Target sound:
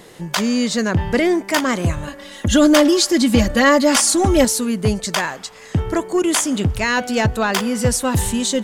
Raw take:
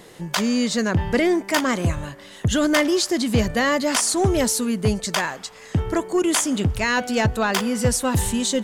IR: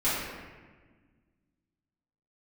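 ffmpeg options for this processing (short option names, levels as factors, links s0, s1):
-filter_complex "[0:a]asettb=1/sr,asplit=3[s0][s1][s2];[s0]atrim=end=2.074[s3];[s1]atrim=start=2.07:end=4.45,asetpts=PTS-STARTPTS,afade=t=in:d=0.004:c=qsin,afade=t=out:st=2.376:d=0.004:c=qsin,aecho=1:1:3.6:0.97,atrim=end_sample=104958[s4];[s2]atrim=start=4.446[s5];[s3][s4]acrossfade=d=0.004:c1=hsin:c2=qsin[s6];[s6][s5]acrossfade=d=0.004:c1=qsin:c2=hsin,volume=1.33"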